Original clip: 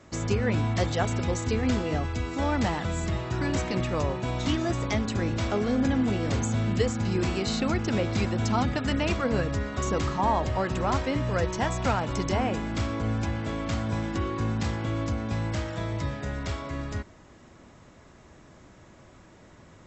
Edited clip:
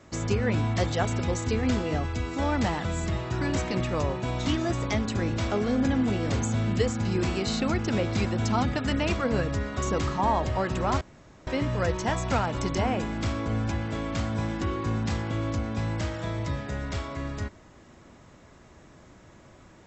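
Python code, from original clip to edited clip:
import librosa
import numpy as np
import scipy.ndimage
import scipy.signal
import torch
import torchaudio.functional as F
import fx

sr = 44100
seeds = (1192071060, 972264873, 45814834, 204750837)

y = fx.edit(x, sr, fx.insert_room_tone(at_s=11.01, length_s=0.46), tone=tone)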